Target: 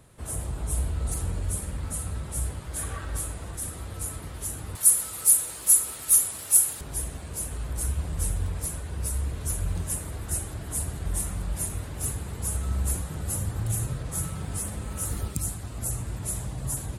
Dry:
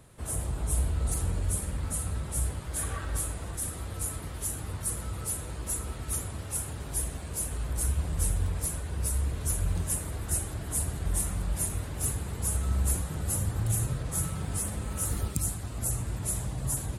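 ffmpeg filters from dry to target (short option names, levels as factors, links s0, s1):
-filter_complex "[0:a]asettb=1/sr,asplit=3[s0][s1][s2];[s0]atrim=end=4.754[s3];[s1]atrim=start=4.75:end=6.81,asetpts=PTS-STARTPTS,afade=t=in:d=0.004:c=qsin,afade=t=out:st=2.056:d=0.004:c=qsin,aemphasis=mode=production:type=riaa[s4];[s2]atrim=start=6.806[s5];[s3][s4]acrossfade=d=0.004:c1=hsin:c2=qsin[s6];[s6][s5]acrossfade=d=0.004:c1=qsin:c2=hsin"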